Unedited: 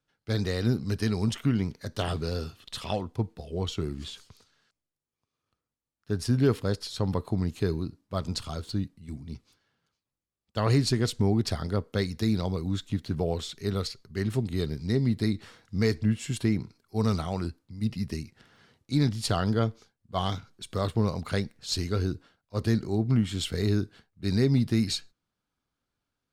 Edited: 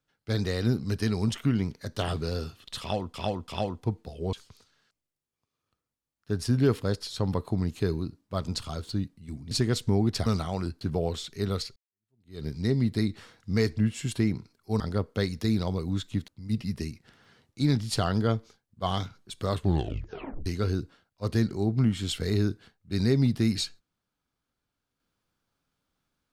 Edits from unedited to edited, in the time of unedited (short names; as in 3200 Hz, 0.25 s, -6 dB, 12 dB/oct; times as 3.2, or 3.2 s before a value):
2.8–3.14 loop, 3 plays
3.65–4.13 cut
9.31–10.83 cut
11.58–13.06 swap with 17.05–17.6
14.01–14.7 fade in exponential
20.87 tape stop 0.91 s